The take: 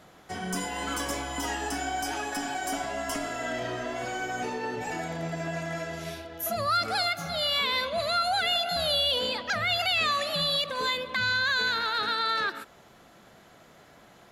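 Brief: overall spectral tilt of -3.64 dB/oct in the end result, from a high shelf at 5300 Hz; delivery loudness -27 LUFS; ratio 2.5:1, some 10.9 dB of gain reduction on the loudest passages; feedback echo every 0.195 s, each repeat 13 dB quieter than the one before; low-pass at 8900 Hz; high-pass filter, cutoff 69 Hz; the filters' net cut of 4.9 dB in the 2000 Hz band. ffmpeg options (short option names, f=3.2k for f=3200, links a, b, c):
-af "highpass=69,lowpass=8.9k,equalizer=f=2k:t=o:g=-6,highshelf=f=5.3k:g=-6.5,acompressor=threshold=-43dB:ratio=2.5,aecho=1:1:195|390|585:0.224|0.0493|0.0108,volume=13.5dB"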